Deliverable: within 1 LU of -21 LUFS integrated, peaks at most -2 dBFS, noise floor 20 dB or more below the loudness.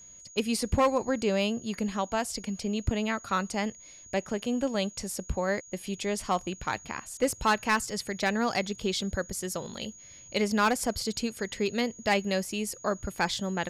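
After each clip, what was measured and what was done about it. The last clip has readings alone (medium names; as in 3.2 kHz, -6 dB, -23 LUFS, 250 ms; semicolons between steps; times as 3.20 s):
clipped samples 0.3%; clipping level -17.0 dBFS; steady tone 6.7 kHz; tone level -48 dBFS; loudness -30.0 LUFS; peak level -17.0 dBFS; loudness target -21.0 LUFS
-> clip repair -17 dBFS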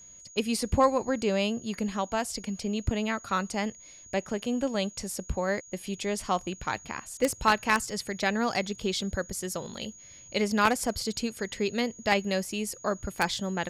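clipped samples 0.0%; steady tone 6.7 kHz; tone level -48 dBFS
-> band-stop 6.7 kHz, Q 30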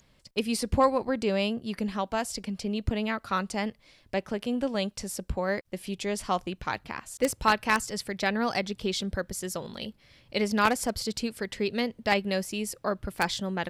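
steady tone not found; loudness -29.5 LUFS; peak level -8.0 dBFS; loudness target -21.0 LUFS
-> trim +8.5 dB; peak limiter -2 dBFS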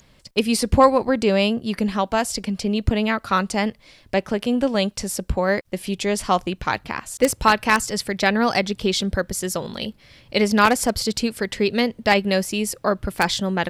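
loudness -21.5 LUFS; peak level -2.0 dBFS; noise floor -55 dBFS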